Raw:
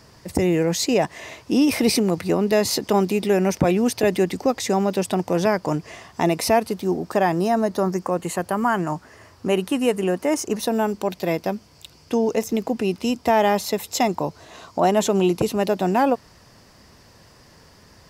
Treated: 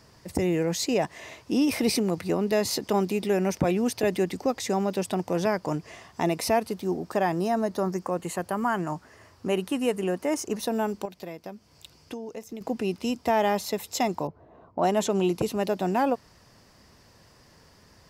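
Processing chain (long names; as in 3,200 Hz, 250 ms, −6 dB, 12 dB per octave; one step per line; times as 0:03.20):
0:11.05–0:12.61: downward compressor 4 to 1, threshold −31 dBFS, peak gain reduction 12.5 dB
0:14.27–0:15.23: low-pass that shuts in the quiet parts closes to 590 Hz, open at −14.5 dBFS
level −5.5 dB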